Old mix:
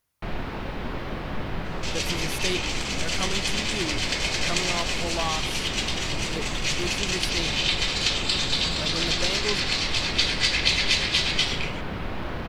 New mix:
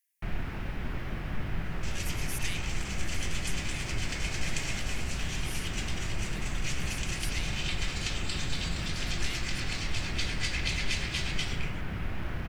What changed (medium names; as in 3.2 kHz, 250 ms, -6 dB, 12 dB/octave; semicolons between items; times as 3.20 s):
speech: add brick-wall FIR high-pass 1.6 kHz; second sound -4.5 dB; master: add graphic EQ 250/500/1000/4000 Hz -5/-9/-8/-10 dB